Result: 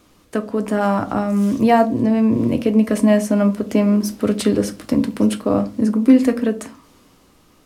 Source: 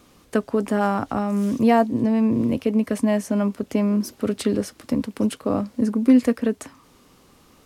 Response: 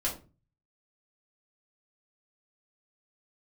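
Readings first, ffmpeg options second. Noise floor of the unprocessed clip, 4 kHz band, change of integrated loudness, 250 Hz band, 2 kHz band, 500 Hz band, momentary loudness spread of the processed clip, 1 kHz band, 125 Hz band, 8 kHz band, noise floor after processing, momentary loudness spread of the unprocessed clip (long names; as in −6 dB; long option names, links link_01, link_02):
−55 dBFS, +5.0 dB, +4.0 dB, +4.0 dB, +4.0 dB, +4.5 dB, 8 LU, +4.0 dB, +5.0 dB, +5.0 dB, −54 dBFS, 9 LU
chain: -filter_complex "[0:a]dynaudnorm=framelen=120:gausssize=13:maxgain=7.5dB,asplit=2[link_01][link_02];[1:a]atrim=start_sample=2205[link_03];[link_02][link_03]afir=irnorm=-1:irlink=0,volume=-10dB[link_04];[link_01][link_04]amix=inputs=2:normalize=0,volume=-3dB"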